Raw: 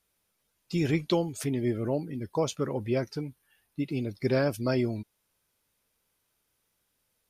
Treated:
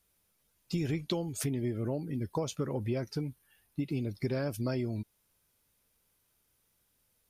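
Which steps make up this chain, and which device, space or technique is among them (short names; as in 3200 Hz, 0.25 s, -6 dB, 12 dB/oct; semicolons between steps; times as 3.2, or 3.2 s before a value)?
ASMR close-microphone chain (low shelf 200 Hz +6.5 dB; compressor 6:1, threshold -28 dBFS, peak gain reduction 9.5 dB; high shelf 7900 Hz +5.5 dB); gain -1 dB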